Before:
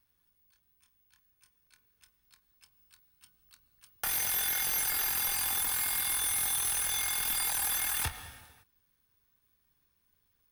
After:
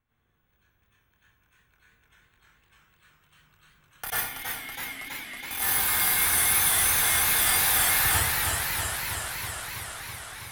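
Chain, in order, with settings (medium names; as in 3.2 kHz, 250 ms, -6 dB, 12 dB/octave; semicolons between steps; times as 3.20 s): local Wiener filter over 9 samples; 4.10–5.51 s: vowel filter i; plate-style reverb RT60 0.62 s, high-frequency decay 0.9×, pre-delay 80 ms, DRR -9.5 dB; modulated delay 323 ms, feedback 79%, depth 120 cents, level -4.5 dB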